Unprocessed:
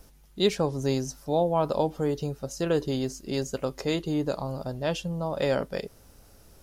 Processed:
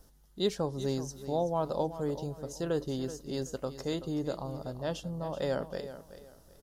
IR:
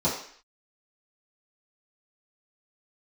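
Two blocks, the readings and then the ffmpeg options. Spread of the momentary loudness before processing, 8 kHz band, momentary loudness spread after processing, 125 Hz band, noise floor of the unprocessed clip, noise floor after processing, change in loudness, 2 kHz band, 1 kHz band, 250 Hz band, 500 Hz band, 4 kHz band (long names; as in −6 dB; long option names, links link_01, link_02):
8 LU, −6.0 dB, 8 LU, −5.5 dB, −56 dBFS, −61 dBFS, −6.0 dB, −9.0 dB, −6.0 dB, −6.0 dB, −6.0 dB, −7.0 dB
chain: -filter_complex "[0:a]equalizer=frequency=2400:width_type=o:width=0.38:gain=-10.5,asplit=2[link_01][link_02];[link_02]aecho=0:1:379|758|1137:0.224|0.0627|0.0176[link_03];[link_01][link_03]amix=inputs=2:normalize=0,volume=-6dB"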